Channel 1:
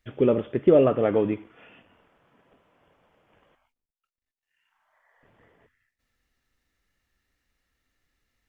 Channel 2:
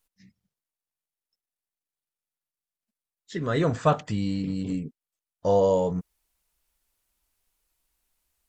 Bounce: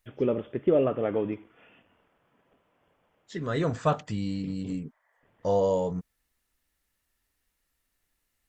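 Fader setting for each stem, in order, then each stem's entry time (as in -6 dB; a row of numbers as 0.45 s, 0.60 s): -5.5 dB, -3.5 dB; 0.00 s, 0.00 s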